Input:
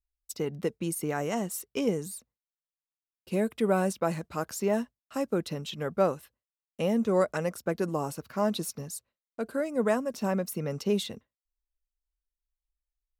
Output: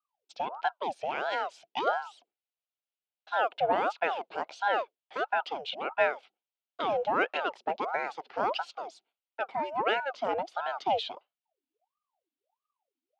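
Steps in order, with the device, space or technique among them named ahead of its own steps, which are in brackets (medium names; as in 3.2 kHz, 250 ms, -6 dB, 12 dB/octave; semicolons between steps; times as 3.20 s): voice changer toy (ring modulator with a swept carrier 740 Hz, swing 65%, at 1.5 Hz; cabinet simulation 500–4000 Hz, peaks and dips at 720 Hz +4 dB, 1.1 kHz -7 dB, 1.8 kHz -9 dB, 2.9 kHz +4 dB); trim +4.5 dB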